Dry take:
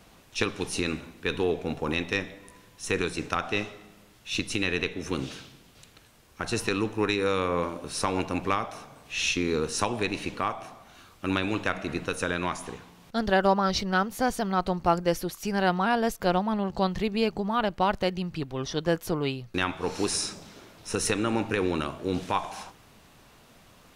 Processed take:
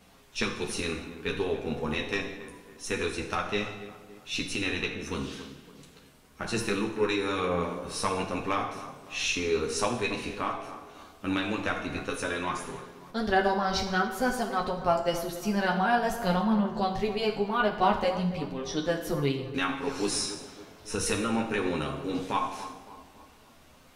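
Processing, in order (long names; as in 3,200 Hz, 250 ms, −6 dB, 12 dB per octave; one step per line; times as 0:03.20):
multi-voice chorus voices 4, 0.21 Hz, delay 11 ms, depth 3.8 ms
tape delay 279 ms, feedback 52%, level −12 dB, low-pass 1,500 Hz
reverb whose tail is shaped and stops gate 250 ms falling, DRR 4 dB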